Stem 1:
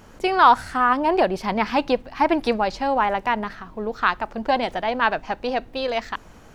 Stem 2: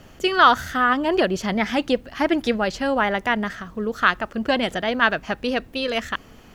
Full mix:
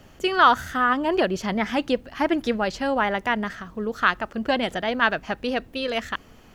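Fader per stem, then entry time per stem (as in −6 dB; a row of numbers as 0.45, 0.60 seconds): −16.0, −3.5 decibels; 0.00, 0.00 seconds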